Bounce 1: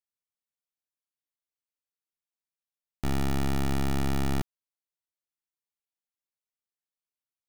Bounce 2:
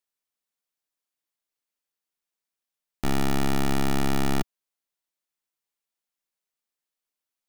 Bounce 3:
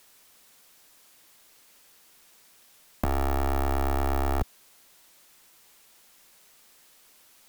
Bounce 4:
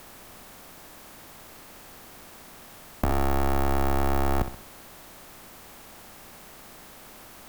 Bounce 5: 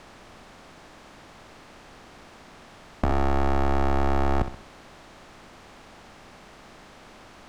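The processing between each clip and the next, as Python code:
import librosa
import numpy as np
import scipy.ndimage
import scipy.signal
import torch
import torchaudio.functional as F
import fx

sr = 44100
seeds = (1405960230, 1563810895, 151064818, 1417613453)

y1 = fx.peak_eq(x, sr, hz=86.0, db=-11.5, octaves=1.3)
y1 = y1 * librosa.db_to_amplitude(5.5)
y2 = fx.fold_sine(y1, sr, drive_db=19, ceiling_db=-13.0)
y2 = fx.over_compress(y2, sr, threshold_db=-25.0, ratio=-1.0)
y3 = fx.bin_compress(y2, sr, power=0.6)
y3 = fx.echo_feedback(y3, sr, ms=64, feedback_pct=42, wet_db=-11.0)
y3 = y3 * librosa.db_to_amplitude(1.0)
y4 = fx.air_absorb(y3, sr, metres=100.0)
y4 = y4 * librosa.db_to_amplitude(1.5)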